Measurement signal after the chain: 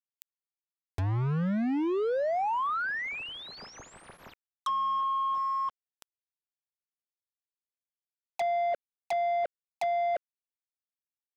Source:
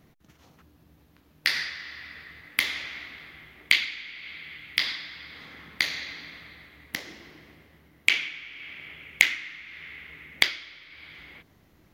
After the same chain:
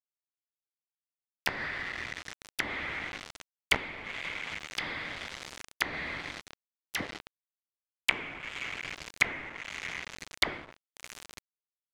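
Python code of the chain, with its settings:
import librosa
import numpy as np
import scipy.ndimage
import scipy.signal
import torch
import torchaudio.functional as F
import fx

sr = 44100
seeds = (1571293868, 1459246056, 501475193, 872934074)

y = fx.dispersion(x, sr, late='lows', ms=60.0, hz=1000.0)
y = fx.quant_companded(y, sr, bits=2)
y = fx.env_lowpass_down(y, sr, base_hz=1200.0, full_db=-24.0)
y = F.gain(torch.from_numpy(y), -2.0).numpy()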